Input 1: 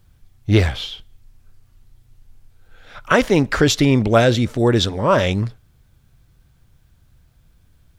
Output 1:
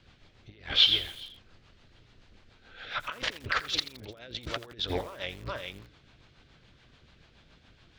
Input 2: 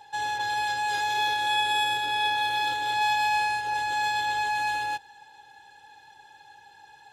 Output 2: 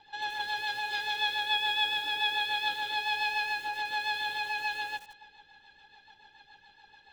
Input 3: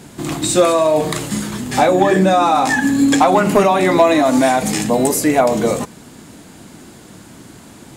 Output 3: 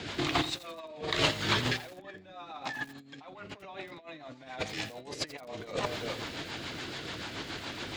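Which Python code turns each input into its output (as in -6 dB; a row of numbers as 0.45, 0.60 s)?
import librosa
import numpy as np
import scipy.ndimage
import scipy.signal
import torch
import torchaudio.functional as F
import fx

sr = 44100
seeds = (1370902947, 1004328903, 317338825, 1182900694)

p1 = fx.octave_divider(x, sr, octaves=1, level_db=-2.0)
p2 = fx.dmg_noise_colour(p1, sr, seeds[0], colour='brown', level_db=-55.0)
p3 = (np.kron(p2[::2], np.eye(2)[0]) * 2)[:len(p2)]
p4 = p3 + fx.echo_single(p3, sr, ms=390, db=-23.0, dry=0)
p5 = fx.over_compress(p4, sr, threshold_db=-21.0, ratio=-0.5)
p6 = scipy.signal.sosfilt(scipy.signal.butter(4, 4100.0, 'lowpass', fs=sr, output='sos'), p5)
p7 = fx.dynamic_eq(p6, sr, hz=210.0, q=1.8, threshold_db=-38.0, ratio=4.0, max_db=-7)
p8 = fx.rotary(p7, sr, hz=7.0)
p9 = fx.tilt_eq(p8, sr, slope=3.5)
p10 = fx.echo_crushed(p9, sr, ms=84, feedback_pct=55, bits=6, wet_db=-14.0)
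y = F.gain(torch.from_numpy(p10), -3.5).numpy()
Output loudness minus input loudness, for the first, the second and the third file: -12.0, -4.5, -20.0 LU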